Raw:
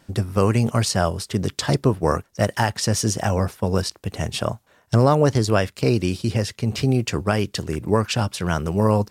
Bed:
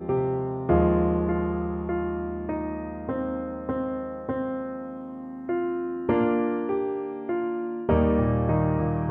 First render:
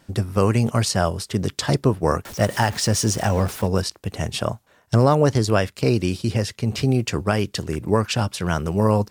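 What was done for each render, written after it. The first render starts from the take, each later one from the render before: 2.25–3.67 s: jump at every zero crossing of -31 dBFS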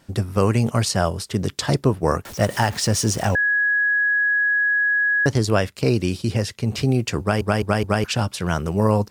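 3.35–5.26 s: bleep 1.67 kHz -16 dBFS; 7.20 s: stutter in place 0.21 s, 4 plays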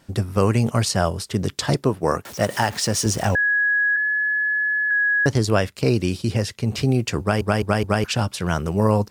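1.74–3.06 s: high-pass 160 Hz 6 dB/octave; 3.96–4.91 s: robot voice 155 Hz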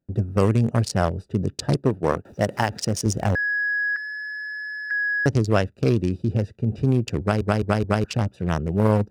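local Wiener filter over 41 samples; gate with hold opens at -44 dBFS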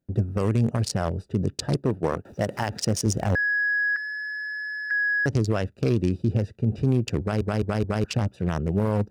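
peak limiter -12.5 dBFS, peak gain reduction 8 dB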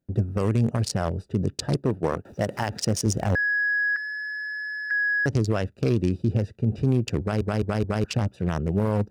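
no audible change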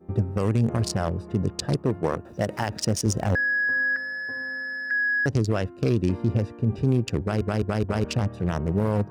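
add bed -16.5 dB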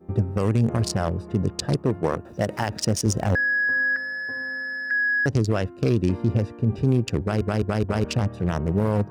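trim +1.5 dB

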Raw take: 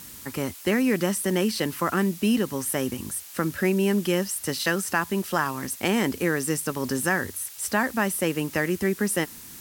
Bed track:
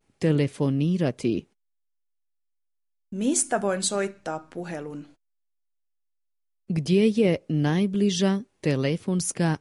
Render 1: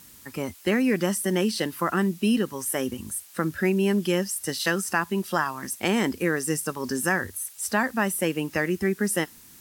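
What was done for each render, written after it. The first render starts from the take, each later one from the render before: noise print and reduce 7 dB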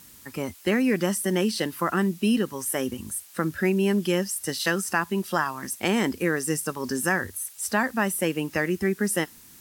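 no audible change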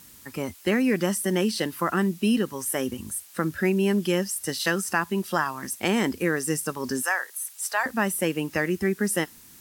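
7.02–7.86 s: high-pass 610 Hz 24 dB/octave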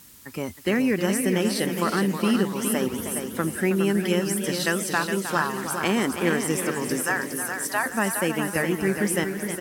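feedback delay 414 ms, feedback 40%, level -7 dB; modulated delay 317 ms, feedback 52%, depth 158 cents, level -10 dB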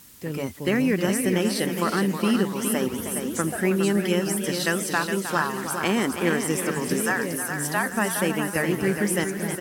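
add bed track -10 dB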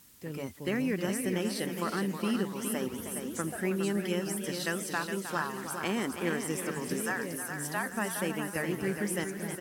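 trim -8.5 dB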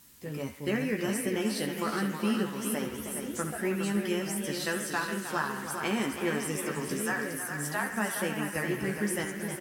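doubling 14 ms -5 dB; band-passed feedback delay 70 ms, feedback 66%, band-pass 1.9 kHz, level -8 dB

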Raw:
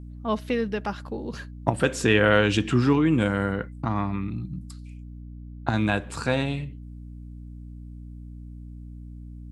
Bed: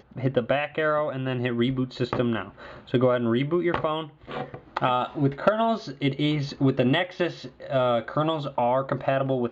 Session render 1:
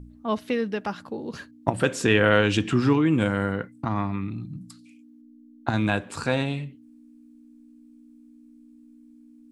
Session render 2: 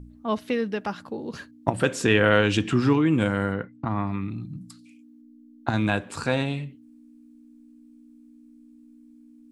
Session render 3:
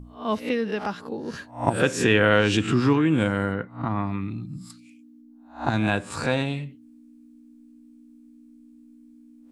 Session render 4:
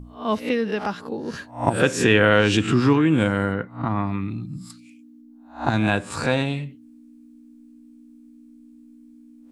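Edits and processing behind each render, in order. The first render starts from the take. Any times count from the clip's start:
de-hum 60 Hz, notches 3
3.54–4.07 s: distance through air 200 m
reverse spectral sustain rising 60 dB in 0.34 s
trim +2.5 dB; peak limiter -3 dBFS, peak gain reduction 1.5 dB

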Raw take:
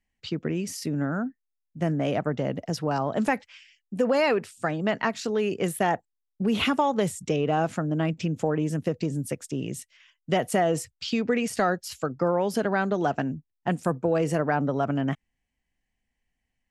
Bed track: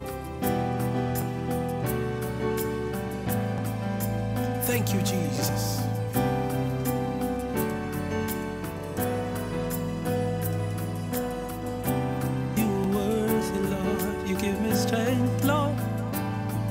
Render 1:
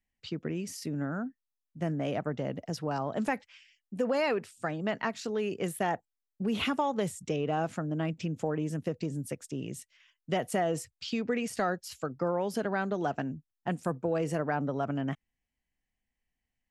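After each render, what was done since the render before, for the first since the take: trim -6 dB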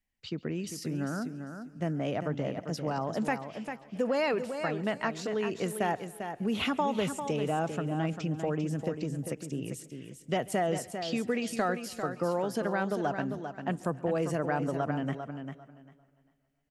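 feedback delay 397 ms, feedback 19%, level -8 dB; modulated delay 137 ms, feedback 69%, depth 79 cents, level -23 dB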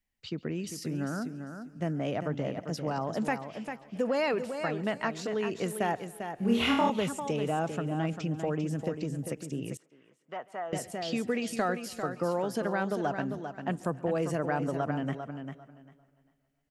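6.36–6.90 s: flutter echo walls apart 4.4 m, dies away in 0.63 s; 9.77–10.73 s: band-pass filter 1.1 kHz, Q 2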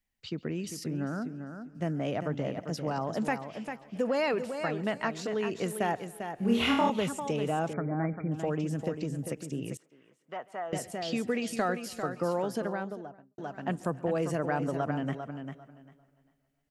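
0.84–1.75 s: low-pass 2.2 kHz 6 dB/octave; 7.73–8.32 s: brick-wall FIR low-pass 2.4 kHz; 12.39–13.38 s: studio fade out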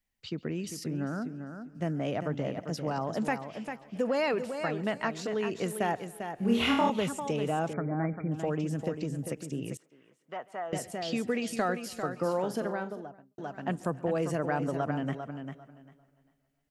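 12.17–13.04 s: flutter echo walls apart 7.5 m, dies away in 0.22 s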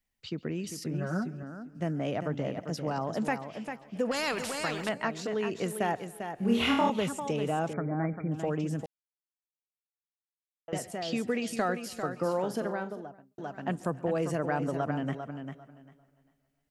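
0.93–1.43 s: comb 5.4 ms, depth 88%; 4.11–4.89 s: spectrum-flattening compressor 2:1; 8.86–10.68 s: mute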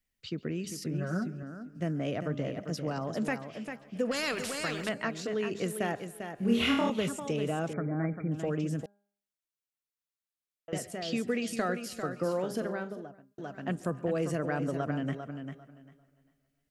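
peaking EQ 870 Hz -8 dB 0.55 oct; de-hum 202.4 Hz, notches 8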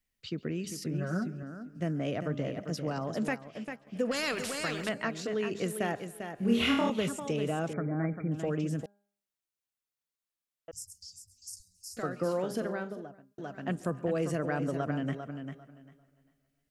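3.29–3.87 s: transient shaper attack 0 dB, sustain -7 dB; 10.71–11.97 s: Chebyshev band-stop 100–5100 Hz, order 5

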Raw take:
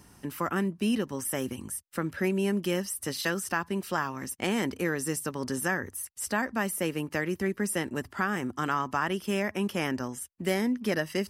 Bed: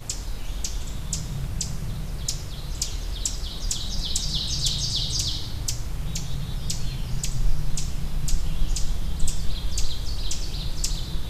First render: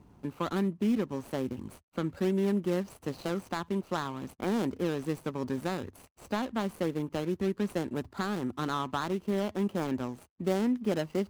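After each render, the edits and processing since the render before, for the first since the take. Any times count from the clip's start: median filter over 25 samples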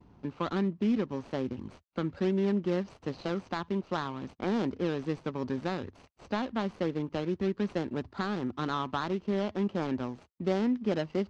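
low-pass 5.5 kHz 24 dB/octave; gate with hold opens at -49 dBFS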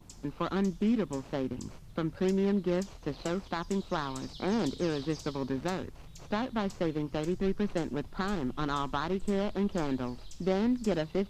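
add bed -21 dB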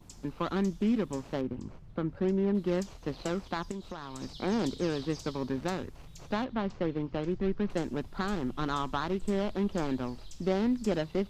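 1.41–2.55 s: low-pass 1.4 kHz 6 dB/octave; 3.71–4.21 s: compression 5:1, threshold -36 dBFS; 6.44–7.70 s: distance through air 170 m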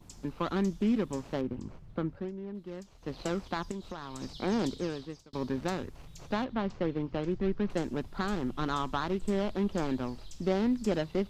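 2.02–3.20 s: dip -12.5 dB, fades 0.29 s; 4.63–5.33 s: fade out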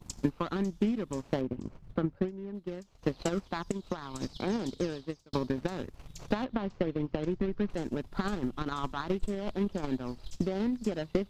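peak limiter -26.5 dBFS, peak gain reduction 9.5 dB; transient shaper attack +11 dB, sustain -7 dB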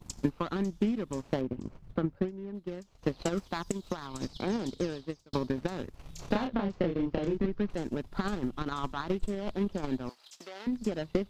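3.37–4.07 s: treble shelf 6.4 kHz +9.5 dB; 6.02–7.46 s: doubling 30 ms -3 dB; 10.09–10.67 s: high-pass 940 Hz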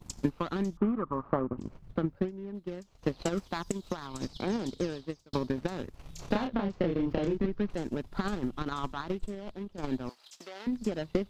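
0.77–1.58 s: resonant low-pass 1.2 kHz, resonance Q 8.3; 6.84–7.33 s: level flattener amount 50%; 8.78–9.78 s: fade out, to -13 dB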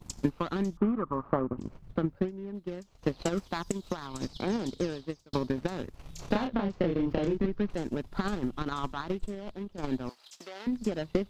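trim +1 dB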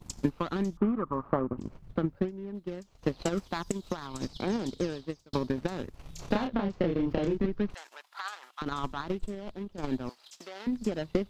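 7.74–8.62 s: high-pass 890 Hz 24 dB/octave

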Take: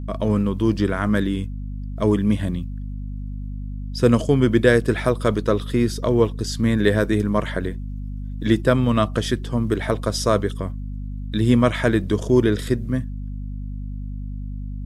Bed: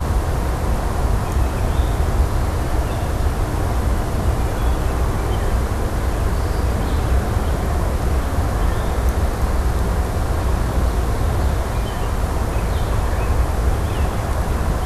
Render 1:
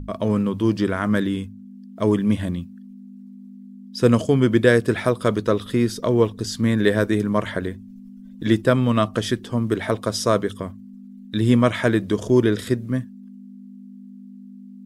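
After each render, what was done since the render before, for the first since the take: hum notches 50/100/150 Hz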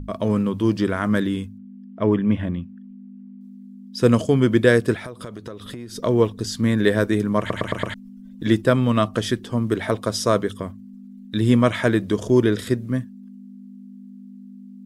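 1.58–3.41 s: Savitzky-Golay filter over 25 samples; 4.94–5.95 s: compression 16:1, threshold -30 dBFS; 7.39 s: stutter in place 0.11 s, 5 plays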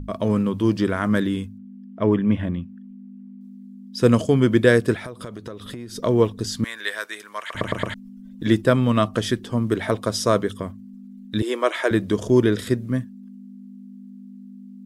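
6.64–7.55 s: high-pass 1.3 kHz; 11.42–11.91 s: elliptic high-pass 340 Hz, stop band 70 dB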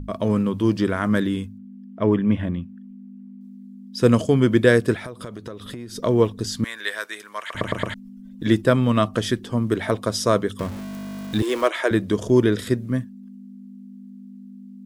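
10.59–11.68 s: jump at every zero crossing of -30 dBFS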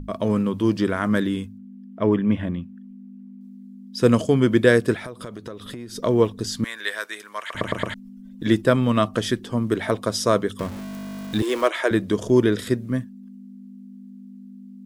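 peaking EQ 77 Hz -3.5 dB 1.6 oct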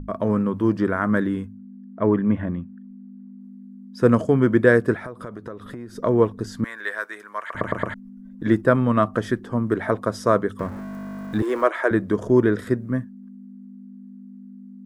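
resonant high shelf 2.2 kHz -10.5 dB, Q 1.5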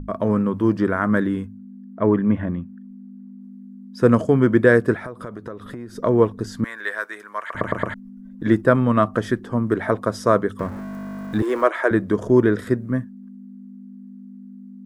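trim +1.5 dB; peak limiter -1 dBFS, peak gain reduction 1 dB

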